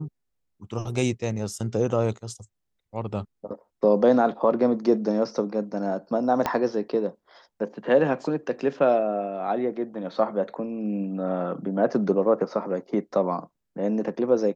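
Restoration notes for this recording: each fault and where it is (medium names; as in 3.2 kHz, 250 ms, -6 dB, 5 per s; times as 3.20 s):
6.46 s: pop -10 dBFS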